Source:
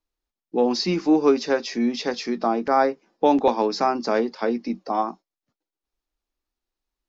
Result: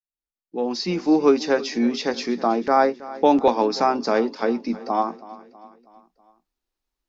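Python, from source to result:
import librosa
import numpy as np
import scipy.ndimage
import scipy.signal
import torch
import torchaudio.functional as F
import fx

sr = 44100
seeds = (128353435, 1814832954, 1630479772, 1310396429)

p1 = fx.fade_in_head(x, sr, length_s=1.3)
p2 = p1 + fx.echo_feedback(p1, sr, ms=323, feedback_pct=51, wet_db=-18.0, dry=0)
y = F.gain(torch.from_numpy(p2), 1.5).numpy()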